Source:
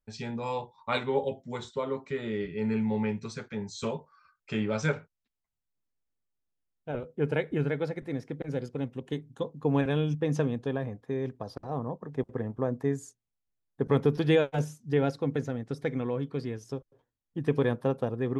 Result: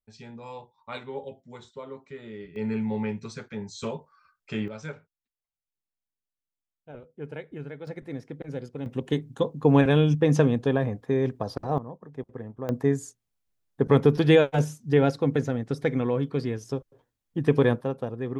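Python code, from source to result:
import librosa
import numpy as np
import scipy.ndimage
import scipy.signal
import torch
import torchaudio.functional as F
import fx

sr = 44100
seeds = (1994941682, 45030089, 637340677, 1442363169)

y = fx.gain(x, sr, db=fx.steps((0.0, -8.0), (2.56, 0.0), (4.68, -9.5), (7.87, -2.0), (8.86, 7.5), (11.78, -5.0), (12.69, 5.5), (17.81, -1.5)))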